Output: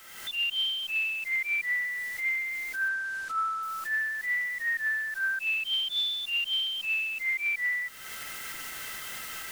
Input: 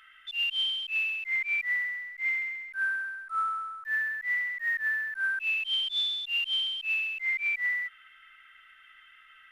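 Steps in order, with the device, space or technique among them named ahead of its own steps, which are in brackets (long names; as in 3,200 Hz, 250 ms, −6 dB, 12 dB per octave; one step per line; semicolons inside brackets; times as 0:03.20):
cheap recorder with automatic gain (white noise bed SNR 22 dB; camcorder AGC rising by 44 dB per second)
0:02.88–0:03.63: low-pass filter 8,800 Hz 12 dB per octave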